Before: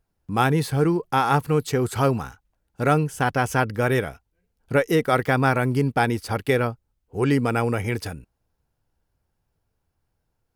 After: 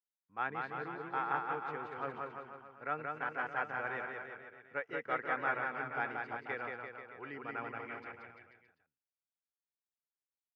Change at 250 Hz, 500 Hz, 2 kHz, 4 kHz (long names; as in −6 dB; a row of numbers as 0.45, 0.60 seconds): −25.0, −19.5, −10.5, −23.0 decibels